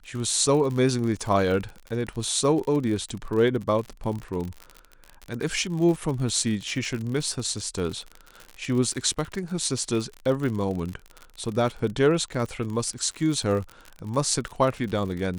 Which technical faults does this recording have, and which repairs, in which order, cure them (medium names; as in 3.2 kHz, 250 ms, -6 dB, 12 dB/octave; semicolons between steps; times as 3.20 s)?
crackle 51 per s -30 dBFS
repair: de-click